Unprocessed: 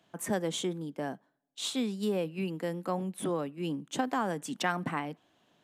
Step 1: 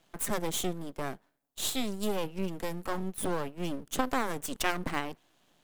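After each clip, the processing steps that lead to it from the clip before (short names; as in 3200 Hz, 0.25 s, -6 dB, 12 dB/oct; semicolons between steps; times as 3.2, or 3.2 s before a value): half-wave rectifier; high shelf 6900 Hz +10 dB; gain +3.5 dB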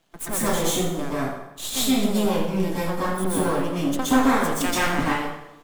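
feedback echo 85 ms, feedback 52%, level -14 dB; plate-style reverb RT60 0.8 s, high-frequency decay 0.65×, pre-delay 0.11 s, DRR -9 dB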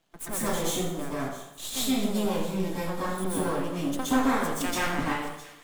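thin delay 0.662 s, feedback 65%, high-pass 2400 Hz, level -16.5 dB; gain -5.5 dB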